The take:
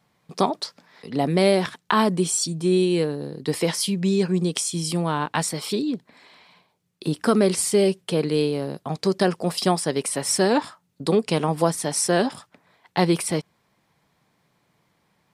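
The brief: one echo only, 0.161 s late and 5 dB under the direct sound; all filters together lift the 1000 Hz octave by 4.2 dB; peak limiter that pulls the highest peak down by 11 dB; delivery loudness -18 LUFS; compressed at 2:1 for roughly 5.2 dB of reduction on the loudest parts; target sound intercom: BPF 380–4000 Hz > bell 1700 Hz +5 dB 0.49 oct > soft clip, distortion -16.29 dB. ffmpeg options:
-af "equalizer=f=1k:t=o:g=5,acompressor=threshold=-21dB:ratio=2,alimiter=limit=-15.5dB:level=0:latency=1,highpass=380,lowpass=4k,equalizer=f=1.7k:t=o:w=0.49:g=5,aecho=1:1:161:0.562,asoftclip=threshold=-21.5dB,volume=13.5dB"

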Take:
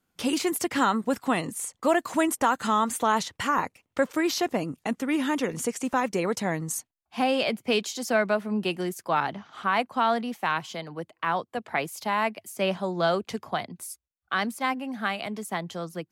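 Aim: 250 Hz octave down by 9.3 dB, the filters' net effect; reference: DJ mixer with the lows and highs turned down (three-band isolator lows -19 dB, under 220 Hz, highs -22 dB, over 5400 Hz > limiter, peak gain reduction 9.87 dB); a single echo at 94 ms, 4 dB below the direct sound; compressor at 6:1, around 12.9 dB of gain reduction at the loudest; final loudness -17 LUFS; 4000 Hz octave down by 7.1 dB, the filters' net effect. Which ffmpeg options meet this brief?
-filter_complex "[0:a]equalizer=f=250:t=o:g=-8.5,equalizer=f=4k:t=o:g=-8.5,acompressor=threshold=-34dB:ratio=6,acrossover=split=220 5400:gain=0.112 1 0.0794[a][b][c];[a][b][c]amix=inputs=3:normalize=0,aecho=1:1:94:0.631,volume=24.5dB,alimiter=limit=-6.5dB:level=0:latency=1"

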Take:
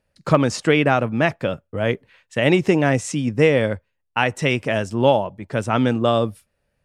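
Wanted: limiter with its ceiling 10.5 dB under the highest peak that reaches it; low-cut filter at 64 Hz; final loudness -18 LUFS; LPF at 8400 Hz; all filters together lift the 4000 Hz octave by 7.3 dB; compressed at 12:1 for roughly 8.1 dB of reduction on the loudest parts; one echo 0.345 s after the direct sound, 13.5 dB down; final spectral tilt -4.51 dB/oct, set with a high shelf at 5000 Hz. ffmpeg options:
-af "highpass=64,lowpass=8.4k,equalizer=f=4k:t=o:g=8.5,highshelf=f=5k:g=5,acompressor=threshold=-17dB:ratio=12,alimiter=limit=-15.5dB:level=0:latency=1,aecho=1:1:345:0.211,volume=9.5dB"

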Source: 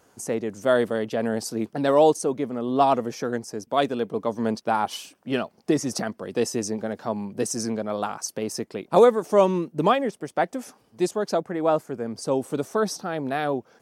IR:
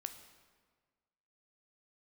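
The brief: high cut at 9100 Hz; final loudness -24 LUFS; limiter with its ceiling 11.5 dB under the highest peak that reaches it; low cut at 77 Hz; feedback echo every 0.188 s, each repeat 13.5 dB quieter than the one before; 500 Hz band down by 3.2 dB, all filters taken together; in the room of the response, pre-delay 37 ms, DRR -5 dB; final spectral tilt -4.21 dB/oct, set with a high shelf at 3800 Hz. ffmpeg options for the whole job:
-filter_complex "[0:a]highpass=77,lowpass=9.1k,equalizer=f=500:t=o:g=-4,highshelf=f=3.8k:g=3,alimiter=limit=-18dB:level=0:latency=1,aecho=1:1:188|376:0.211|0.0444,asplit=2[a][b];[1:a]atrim=start_sample=2205,adelay=37[c];[b][c]afir=irnorm=-1:irlink=0,volume=7.5dB[d];[a][d]amix=inputs=2:normalize=0"

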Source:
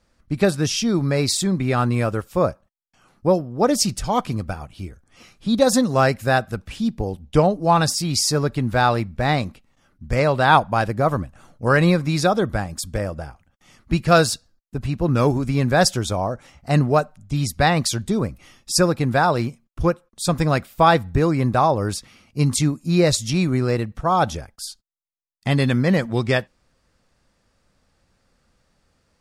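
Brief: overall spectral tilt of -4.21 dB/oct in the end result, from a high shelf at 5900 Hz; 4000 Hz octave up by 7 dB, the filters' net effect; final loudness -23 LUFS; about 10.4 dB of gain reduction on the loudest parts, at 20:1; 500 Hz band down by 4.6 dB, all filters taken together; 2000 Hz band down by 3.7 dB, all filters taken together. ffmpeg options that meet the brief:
-af "equalizer=f=500:t=o:g=-5.5,equalizer=f=2k:t=o:g=-7,equalizer=f=4k:t=o:g=6.5,highshelf=f=5.9k:g=8.5,acompressor=threshold=-18dB:ratio=20,volume=1.5dB"

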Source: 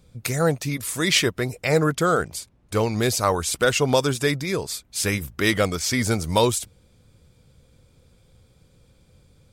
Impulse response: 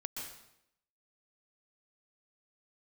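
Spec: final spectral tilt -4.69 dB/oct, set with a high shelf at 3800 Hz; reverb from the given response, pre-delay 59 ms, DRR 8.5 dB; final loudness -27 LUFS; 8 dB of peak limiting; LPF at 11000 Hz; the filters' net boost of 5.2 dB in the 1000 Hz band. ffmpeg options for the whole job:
-filter_complex "[0:a]lowpass=11k,equalizer=f=1k:t=o:g=7,highshelf=f=3.8k:g=-6,alimiter=limit=-11dB:level=0:latency=1,asplit=2[a][b];[1:a]atrim=start_sample=2205,adelay=59[c];[b][c]afir=irnorm=-1:irlink=0,volume=-8dB[d];[a][d]amix=inputs=2:normalize=0,volume=-3.5dB"

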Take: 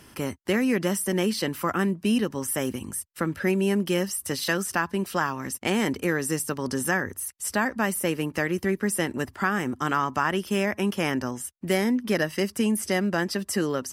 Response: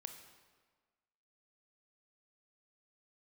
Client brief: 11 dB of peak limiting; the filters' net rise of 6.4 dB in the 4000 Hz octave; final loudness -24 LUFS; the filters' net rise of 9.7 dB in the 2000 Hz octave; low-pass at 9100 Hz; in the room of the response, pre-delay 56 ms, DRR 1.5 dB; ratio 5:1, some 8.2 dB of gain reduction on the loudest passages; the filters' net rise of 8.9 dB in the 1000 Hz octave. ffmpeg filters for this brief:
-filter_complex "[0:a]lowpass=9.1k,equalizer=f=1k:t=o:g=8.5,equalizer=f=2k:t=o:g=8,equalizer=f=4k:t=o:g=5,acompressor=threshold=-20dB:ratio=5,alimiter=limit=-16dB:level=0:latency=1,asplit=2[a][b];[1:a]atrim=start_sample=2205,adelay=56[c];[b][c]afir=irnorm=-1:irlink=0,volume=3dB[d];[a][d]amix=inputs=2:normalize=0,volume=1.5dB"

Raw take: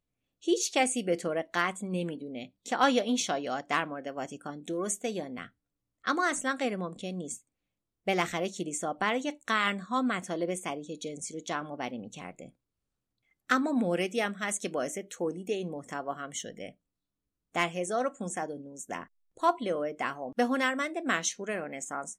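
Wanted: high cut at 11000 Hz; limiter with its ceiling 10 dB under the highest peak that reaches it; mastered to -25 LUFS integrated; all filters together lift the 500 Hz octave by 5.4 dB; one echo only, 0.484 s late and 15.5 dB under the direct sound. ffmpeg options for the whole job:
-af "lowpass=11k,equalizer=f=500:t=o:g=6.5,alimiter=limit=-19.5dB:level=0:latency=1,aecho=1:1:484:0.168,volume=6.5dB"

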